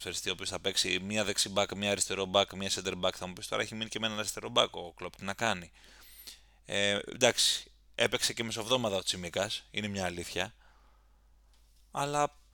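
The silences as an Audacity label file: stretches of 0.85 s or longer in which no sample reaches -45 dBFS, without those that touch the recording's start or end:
10.490000	11.950000	silence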